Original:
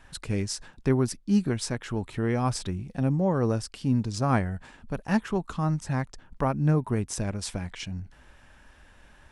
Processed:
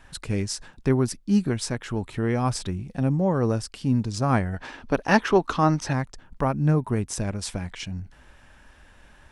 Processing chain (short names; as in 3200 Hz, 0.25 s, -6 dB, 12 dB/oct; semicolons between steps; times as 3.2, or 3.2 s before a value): spectral gain 4.53–5.93, 250–6500 Hz +9 dB; gain +2 dB